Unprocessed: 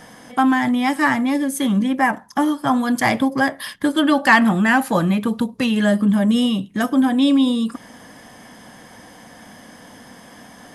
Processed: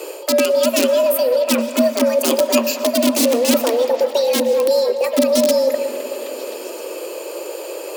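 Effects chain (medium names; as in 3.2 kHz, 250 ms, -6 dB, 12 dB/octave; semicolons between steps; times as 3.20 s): high-pass 68 Hz 24 dB/octave; integer overflow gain 9.5 dB; amplifier tone stack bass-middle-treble 10-0-1; reverse; compression 6:1, threshold -45 dBFS, peak gain reduction 16.5 dB; reverse; frequency shift +170 Hz; dynamic bell 330 Hz, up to -5 dB, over -58 dBFS, Q 2; repeats whose band climbs or falls 350 ms, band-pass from 640 Hz, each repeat 0.7 oct, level -8 dB; reverberation RT60 3.9 s, pre-delay 115 ms, DRR 12 dB; speed mistake 33 rpm record played at 45 rpm; loudness maximiser +34 dB; trim -1 dB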